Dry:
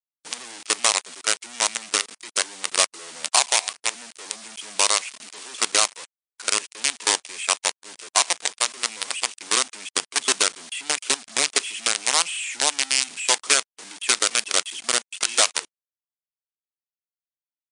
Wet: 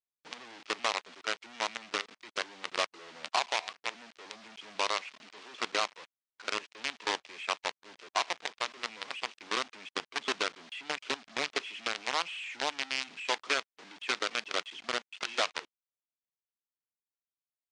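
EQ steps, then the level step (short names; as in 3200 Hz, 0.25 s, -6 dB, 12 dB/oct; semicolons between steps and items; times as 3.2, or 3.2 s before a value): air absorption 220 m; -5.5 dB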